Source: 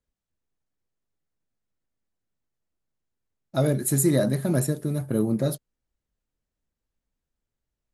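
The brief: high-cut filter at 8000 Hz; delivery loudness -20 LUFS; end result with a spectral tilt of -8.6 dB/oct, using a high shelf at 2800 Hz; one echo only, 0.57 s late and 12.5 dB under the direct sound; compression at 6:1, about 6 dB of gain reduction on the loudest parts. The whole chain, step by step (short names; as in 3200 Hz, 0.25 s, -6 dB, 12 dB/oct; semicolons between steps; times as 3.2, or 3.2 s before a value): LPF 8000 Hz; high shelf 2800 Hz -4 dB; compressor 6:1, threshold -23 dBFS; echo 0.57 s -12.5 dB; gain +9 dB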